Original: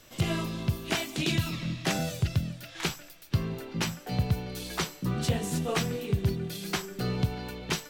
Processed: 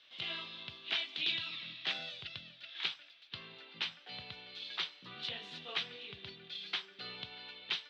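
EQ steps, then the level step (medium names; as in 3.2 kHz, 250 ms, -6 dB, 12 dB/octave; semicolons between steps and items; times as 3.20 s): band-pass filter 3.6 kHz, Q 3.5; distance through air 320 m; +10.0 dB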